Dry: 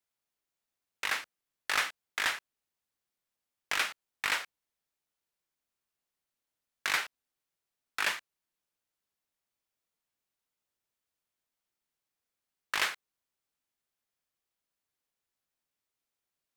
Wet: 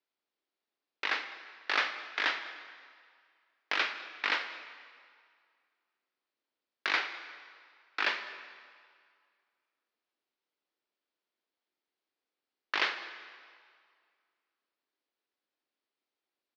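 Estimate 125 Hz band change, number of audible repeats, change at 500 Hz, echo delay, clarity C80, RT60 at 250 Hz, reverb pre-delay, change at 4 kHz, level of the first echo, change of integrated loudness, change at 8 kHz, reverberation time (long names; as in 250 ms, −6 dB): can't be measured, 1, +3.5 dB, 205 ms, 10.5 dB, 1.8 s, 24 ms, 0.0 dB, −21.0 dB, −0.5 dB, −14.0 dB, 2.1 s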